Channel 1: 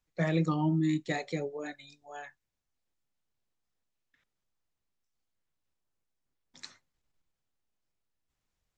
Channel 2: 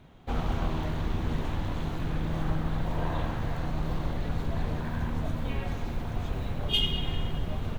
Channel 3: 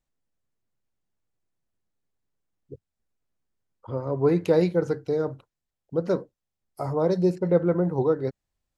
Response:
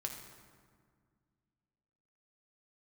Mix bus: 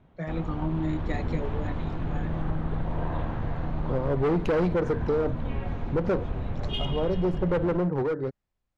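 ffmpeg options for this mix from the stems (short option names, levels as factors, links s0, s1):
-filter_complex "[0:a]volume=0.531,asplit=2[s0][s1];[1:a]highshelf=f=4500:g=-9,volume=0.562[s2];[2:a]volume=0.944[s3];[s1]apad=whole_len=387165[s4];[s3][s4]sidechaincompress=threshold=0.00224:ratio=8:attack=11:release=1350[s5];[s2][s5]amix=inputs=2:normalize=0,volume=15,asoftclip=hard,volume=0.0668,acompressor=threshold=0.0398:ratio=6,volume=1[s6];[s0][s6]amix=inputs=2:normalize=0,aemphasis=mode=reproduction:type=75fm,dynaudnorm=f=140:g=13:m=1.88"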